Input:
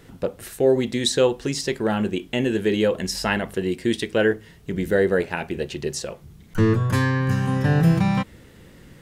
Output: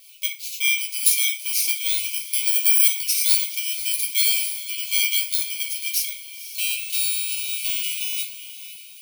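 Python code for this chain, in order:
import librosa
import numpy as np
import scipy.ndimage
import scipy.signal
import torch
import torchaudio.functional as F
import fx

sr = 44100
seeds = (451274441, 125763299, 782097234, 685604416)

p1 = fx.bit_reversed(x, sr, seeds[0], block=16)
p2 = fx.high_shelf(p1, sr, hz=7900.0, db=10.5, at=(2.47, 2.88))
p3 = fx.rider(p2, sr, range_db=3, speed_s=0.5)
p4 = p2 + F.gain(torch.from_numpy(p3), 0.0).numpy()
p5 = fx.brickwall_highpass(p4, sr, low_hz=2100.0)
p6 = fx.echo_diffused(p5, sr, ms=515, feedback_pct=43, wet_db=-12.5)
p7 = fx.rev_fdn(p6, sr, rt60_s=0.4, lf_ratio=1.0, hf_ratio=0.75, size_ms=40.0, drr_db=-2.0)
p8 = fx.sustainer(p7, sr, db_per_s=45.0, at=(4.09, 4.74))
y = F.gain(torch.from_numpy(p8), -2.0).numpy()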